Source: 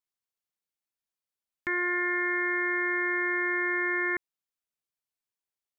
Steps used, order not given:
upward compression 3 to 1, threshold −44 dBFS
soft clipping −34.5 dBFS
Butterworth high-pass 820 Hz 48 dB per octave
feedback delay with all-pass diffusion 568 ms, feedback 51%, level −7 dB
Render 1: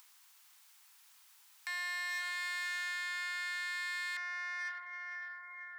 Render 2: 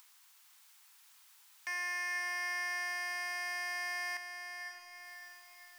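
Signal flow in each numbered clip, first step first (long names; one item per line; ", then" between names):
feedback delay with all-pass diffusion, then soft clipping, then Butterworth high-pass, then upward compression
Butterworth high-pass, then upward compression, then soft clipping, then feedback delay with all-pass diffusion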